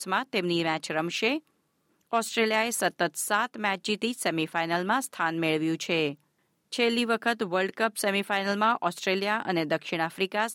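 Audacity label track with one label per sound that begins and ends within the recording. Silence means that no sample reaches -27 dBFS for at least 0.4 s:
2.130000	6.110000	sound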